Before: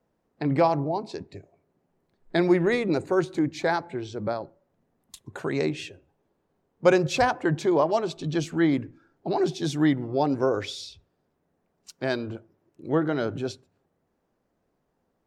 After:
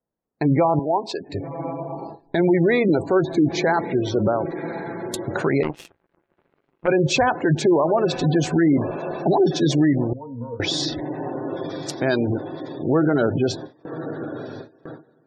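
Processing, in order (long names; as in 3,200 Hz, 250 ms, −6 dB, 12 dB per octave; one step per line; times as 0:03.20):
in parallel at +1 dB: downward compressor 6 to 1, threshold −34 dBFS, peak gain reduction 19.5 dB
on the sum: feedback delay with all-pass diffusion 1,093 ms, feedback 67%, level −15.5 dB
gate on every frequency bin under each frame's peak −25 dB strong
automatic gain control gain up to 6 dB
noise gate with hold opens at −26 dBFS
0:10.13–0:10.60: resonances in every octave A#, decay 0.32 s
brickwall limiter −11.5 dBFS, peak gain reduction 9 dB
0:00.79–0:01.28: meter weighting curve A
0:05.63–0:06.88: power curve on the samples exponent 3
level +1.5 dB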